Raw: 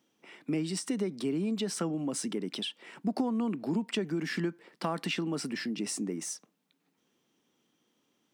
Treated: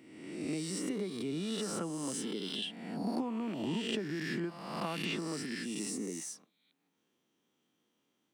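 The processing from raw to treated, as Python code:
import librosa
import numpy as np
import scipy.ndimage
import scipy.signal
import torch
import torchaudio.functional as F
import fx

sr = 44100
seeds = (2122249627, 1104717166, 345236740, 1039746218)

y = fx.spec_swells(x, sr, rise_s=1.19)
y = fx.peak_eq(y, sr, hz=5500.0, db=-3.0, octaves=0.41)
y = y * 10.0 ** (-7.0 / 20.0)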